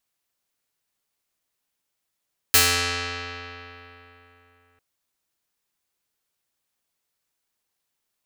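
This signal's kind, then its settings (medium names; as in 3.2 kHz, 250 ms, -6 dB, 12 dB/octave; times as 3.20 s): plucked string F2, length 2.25 s, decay 3.43 s, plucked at 0.49, medium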